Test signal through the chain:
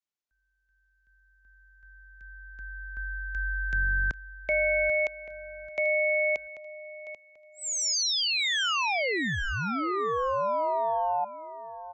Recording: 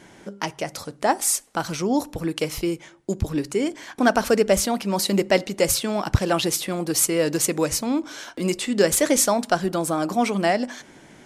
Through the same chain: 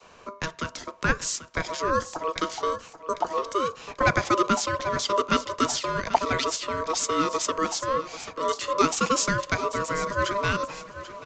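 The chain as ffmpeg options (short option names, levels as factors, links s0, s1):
-filter_complex "[0:a]adynamicequalizer=threshold=0.0224:dfrequency=730:dqfactor=1.1:tfrequency=730:tqfactor=1.1:attack=5:release=100:ratio=0.375:range=2:mode=cutabove:tftype=bell,aeval=exprs='val(0)*sin(2*PI*800*n/s)':c=same,acrossover=split=180|590|3100[s0][s1][s2][s3];[s0]aeval=exprs='clip(val(0),-1,0.0316)':c=same[s4];[s4][s1][s2][s3]amix=inputs=4:normalize=0,aecho=1:1:788|1576|2364:0.2|0.0519|0.0135,aresample=16000,aresample=44100"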